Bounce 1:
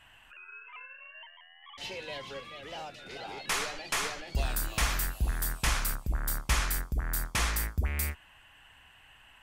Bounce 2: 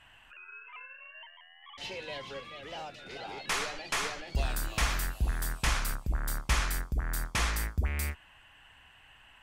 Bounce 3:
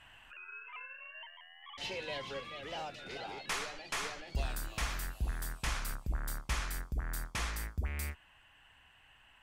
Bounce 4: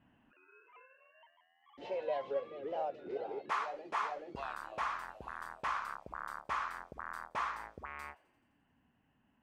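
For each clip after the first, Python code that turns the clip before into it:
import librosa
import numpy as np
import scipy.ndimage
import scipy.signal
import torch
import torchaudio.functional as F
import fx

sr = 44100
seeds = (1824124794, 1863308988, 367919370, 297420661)

y1 = fx.high_shelf(x, sr, hz=11000.0, db=-9.5)
y2 = fx.rider(y1, sr, range_db=5, speed_s=0.5)
y2 = F.gain(torch.from_numpy(y2), -5.0).numpy()
y3 = fx.auto_wah(y2, sr, base_hz=210.0, top_hz=1100.0, q=3.4, full_db=-33.0, direction='up')
y3 = fx.echo_wet_highpass(y3, sr, ms=86, feedback_pct=74, hz=3200.0, wet_db=-23.5)
y3 = F.gain(torch.from_numpy(y3), 10.5).numpy()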